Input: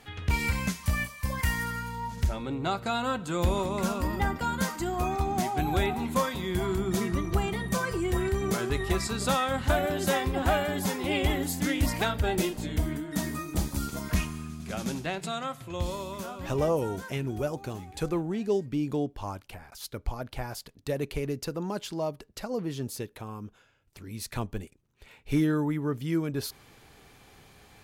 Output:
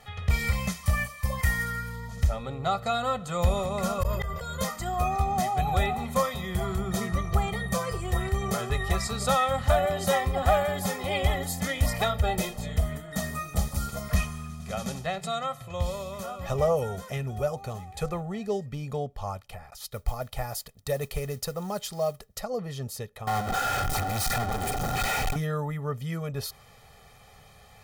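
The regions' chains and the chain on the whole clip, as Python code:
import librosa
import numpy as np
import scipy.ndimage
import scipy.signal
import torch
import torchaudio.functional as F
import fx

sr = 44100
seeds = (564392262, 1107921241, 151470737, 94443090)

y = fx.chain(x, sr, fx.comb(ms=1.9, depth=0.98),
    fx.auto_swell(attack_ms=568.0),
    fx.sustainer(db_per_s=27.0), at=(3.98, 4.64))
y = fx.chain(y, sr, fx.high_shelf(hz=7700.0, db=10.5),
    fx.mod_noise(seeds[0], snr_db=24), at=(19.91, 22.41))
y = fx.chain(y, sr, fx.clip_1bit(),
    fx.small_body(hz=(310.0, 760.0, 1400.0), ring_ms=55, db=16),
    fx.env_flatten(amount_pct=100), at=(23.27, 25.36))
y = fx.peak_eq(y, sr, hz=900.0, db=9.0, octaves=0.28)
y = fx.notch(y, sr, hz=2700.0, q=16.0)
y = y + 0.93 * np.pad(y, (int(1.6 * sr / 1000.0), 0))[:len(y)]
y = y * 10.0 ** (-2.0 / 20.0)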